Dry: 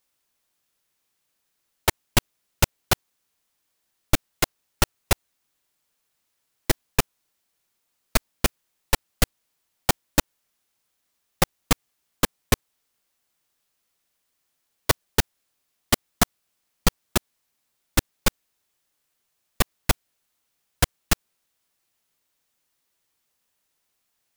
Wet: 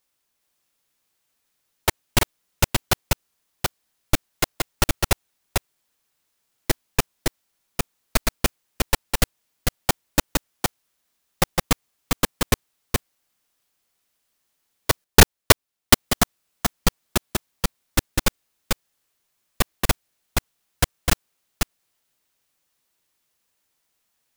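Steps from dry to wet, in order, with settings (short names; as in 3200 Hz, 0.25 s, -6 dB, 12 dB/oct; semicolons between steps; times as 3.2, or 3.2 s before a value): reverse delay 0.411 s, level -3 dB; 15.04–15.94 sample leveller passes 5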